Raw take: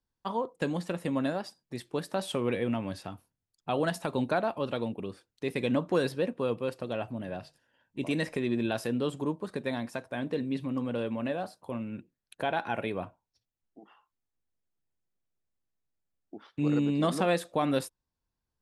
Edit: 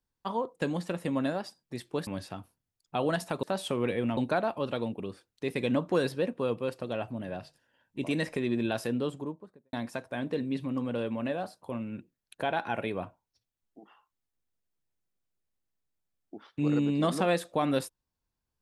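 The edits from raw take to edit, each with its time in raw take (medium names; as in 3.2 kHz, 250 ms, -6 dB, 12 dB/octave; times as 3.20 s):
2.07–2.81 s: move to 4.17 s
8.86–9.73 s: studio fade out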